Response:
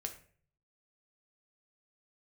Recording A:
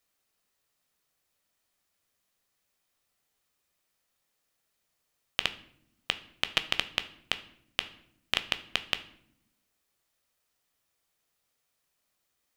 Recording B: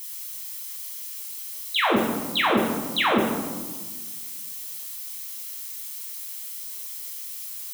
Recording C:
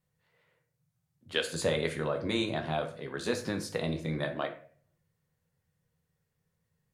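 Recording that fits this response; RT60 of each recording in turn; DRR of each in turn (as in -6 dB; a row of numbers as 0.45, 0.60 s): C; not exponential, 1.4 s, 0.45 s; 10.0, -3.5, 4.0 dB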